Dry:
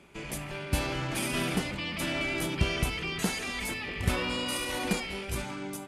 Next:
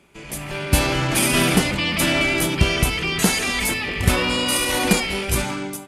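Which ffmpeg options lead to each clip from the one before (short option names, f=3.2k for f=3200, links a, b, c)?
-af "highshelf=f=6.6k:g=5.5,dynaudnorm=f=130:g=7:m=13dB"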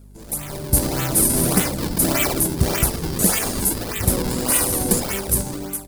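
-filter_complex "[0:a]acrossover=split=780|6000[a][b][c];[b]acrusher=samples=41:mix=1:aa=0.000001:lfo=1:lforange=65.6:lforate=1.7[d];[a][d][c]amix=inputs=3:normalize=0,aeval=exprs='val(0)+0.00891*(sin(2*PI*50*n/s)+sin(2*PI*2*50*n/s)/2+sin(2*PI*3*50*n/s)/3+sin(2*PI*4*50*n/s)/4+sin(2*PI*5*50*n/s)/5)':c=same,aexciter=amount=2.9:drive=1.3:freq=3.9k,volume=-2dB"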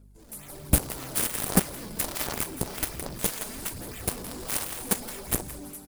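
-af "aecho=1:1:167|334|501|668:0.447|0.138|0.0429|0.0133,aphaser=in_gain=1:out_gain=1:delay=4.8:decay=0.44:speed=1.3:type=sinusoidal,aeval=exprs='1.06*(cos(1*acos(clip(val(0)/1.06,-1,1)))-cos(1*PI/2))+0.0668*(cos(3*acos(clip(val(0)/1.06,-1,1)))-cos(3*PI/2))+0.188*(cos(7*acos(clip(val(0)/1.06,-1,1)))-cos(7*PI/2))':c=same,volume=-6dB"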